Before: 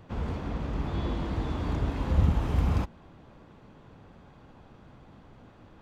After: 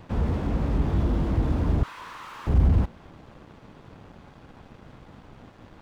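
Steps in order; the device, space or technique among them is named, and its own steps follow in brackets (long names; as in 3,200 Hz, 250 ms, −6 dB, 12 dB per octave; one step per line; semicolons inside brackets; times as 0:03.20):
0:01.83–0:02.47: Butterworth high-pass 960 Hz 72 dB per octave
early transistor amplifier (dead-zone distortion −58.5 dBFS; slew-rate limiting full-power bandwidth 6.6 Hz)
level +8 dB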